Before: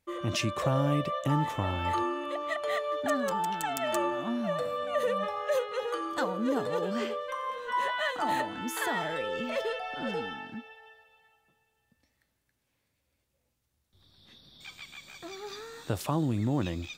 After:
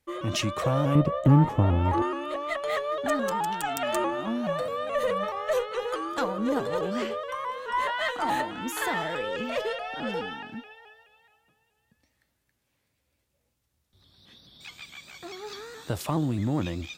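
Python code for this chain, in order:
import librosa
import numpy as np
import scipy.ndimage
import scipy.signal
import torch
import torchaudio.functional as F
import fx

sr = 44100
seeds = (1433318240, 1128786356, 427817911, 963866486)

y = fx.tilt_shelf(x, sr, db=9.5, hz=870.0, at=(0.95, 2.02))
y = fx.cheby_harmonics(y, sr, harmonics=(6,), levels_db=(-27,), full_scale_db=-10.5)
y = fx.vibrato_shape(y, sr, shape='saw_up', rate_hz=4.7, depth_cents=100.0)
y = y * librosa.db_to_amplitude(2.0)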